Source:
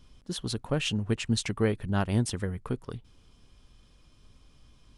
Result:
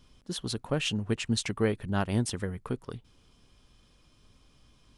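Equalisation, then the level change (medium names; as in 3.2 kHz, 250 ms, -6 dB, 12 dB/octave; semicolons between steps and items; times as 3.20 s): bass shelf 100 Hz -6 dB; 0.0 dB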